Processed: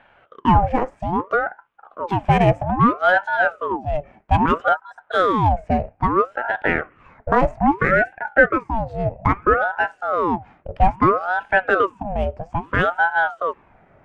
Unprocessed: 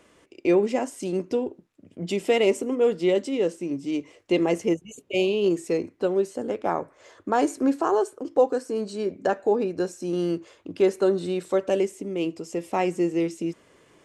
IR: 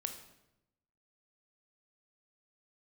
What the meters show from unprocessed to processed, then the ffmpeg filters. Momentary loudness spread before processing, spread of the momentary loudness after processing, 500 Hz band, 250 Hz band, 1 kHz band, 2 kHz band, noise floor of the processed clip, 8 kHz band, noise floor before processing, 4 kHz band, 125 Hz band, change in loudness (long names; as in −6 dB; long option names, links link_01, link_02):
9 LU, 9 LU, +0.5 dB, +1.0 dB, +13.0 dB, +17.0 dB, −57 dBFS, below −15 dB, −59 dBFS, −0.5 dB, +13.0 dB, +5.5 dB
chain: -af "adynamicsmooth=sensitivity=2.5:basefreq=2000,highshelf=frequency=2500:width_type=q:width=1.5:gain=-8,aeval=exprs='val(0)*sin(2*PI*720*n/s+720*0.65/0.61*sin(2*PI*0.61*n/s))':channel_layout=same,volume=8dB"